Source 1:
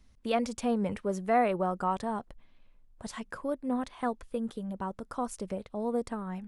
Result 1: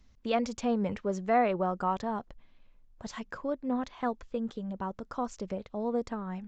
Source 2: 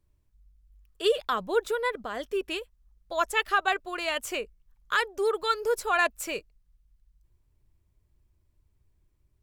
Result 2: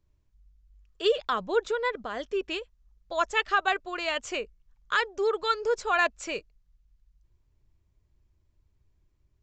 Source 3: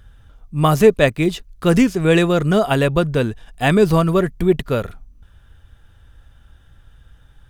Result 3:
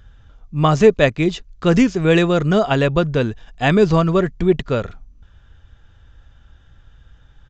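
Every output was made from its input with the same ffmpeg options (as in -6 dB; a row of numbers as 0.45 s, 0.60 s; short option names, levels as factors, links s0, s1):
-af "aresample=16000,aresample=44100"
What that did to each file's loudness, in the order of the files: 0.0 LU, 0.0 LU, 0.0 LU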